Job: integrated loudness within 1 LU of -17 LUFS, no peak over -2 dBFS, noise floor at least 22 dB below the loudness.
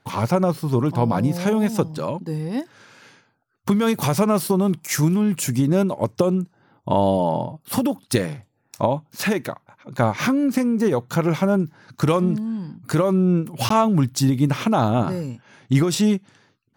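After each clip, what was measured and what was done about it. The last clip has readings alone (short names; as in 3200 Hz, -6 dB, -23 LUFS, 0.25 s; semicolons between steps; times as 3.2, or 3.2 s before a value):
dropouts 1; longest dropout 14 ms; loudness -21.5 LUFS; peak -5.5 dBFS; loudness target -17.0 LUFS
-> interpolate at 13.69, 14 ms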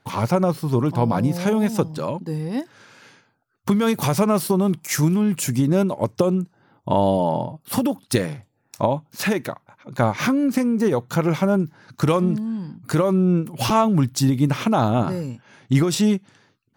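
dropouts 0; loudness -21.5 LUFS; peak -5.5 dBFS; loudness target -17.0 LUFS
-> gain +4.5 dB; limiter -2 dBFS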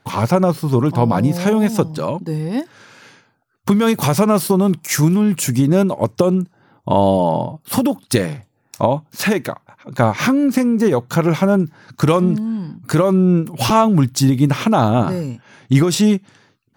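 loudness -17.0 LUFS; peak -2.0 dBFS; noise floor -63 dBFS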